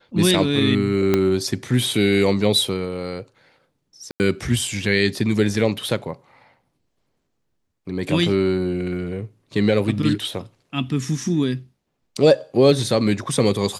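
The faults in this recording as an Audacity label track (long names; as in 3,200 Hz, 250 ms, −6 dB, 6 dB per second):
1.140000	1.140000	click −5 dBFS
4.110000	4.200000	drop-out 89 ms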